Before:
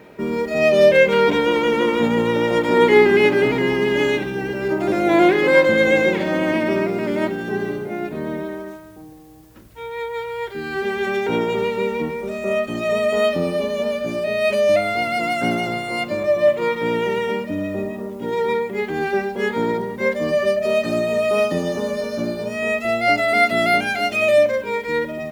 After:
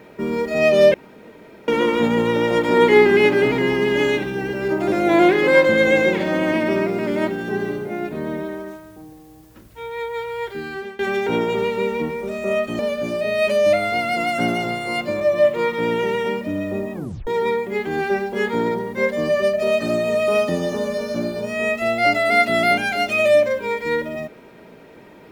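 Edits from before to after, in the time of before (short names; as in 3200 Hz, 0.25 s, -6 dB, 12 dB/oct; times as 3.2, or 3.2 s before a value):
0.94–1.68 room tone
10.55–10.99 fade out, to -21 dB
12.79–13.82 cut
17.97 tape stop 0.33 s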